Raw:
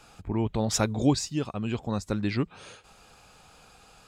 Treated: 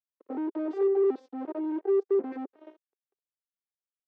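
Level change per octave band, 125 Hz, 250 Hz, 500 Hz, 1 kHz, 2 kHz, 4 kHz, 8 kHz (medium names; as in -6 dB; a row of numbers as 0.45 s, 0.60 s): under -40 dB, -4.0 dB, +7.0 dB, -6.0 dB, under -10 dB, under -30 dB, under -40 dB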